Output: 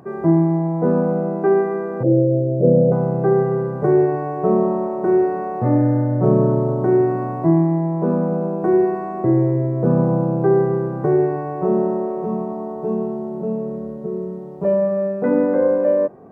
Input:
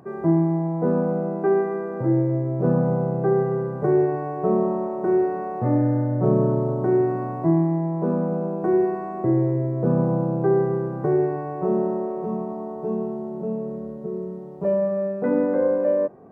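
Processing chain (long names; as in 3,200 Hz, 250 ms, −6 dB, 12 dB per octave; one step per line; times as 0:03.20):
0:02.03–0:02.92: drawn EQ curve 370 Hz 0 dB, 560 Hz +9 dB, 970 Hz −25 dB
level +4 dB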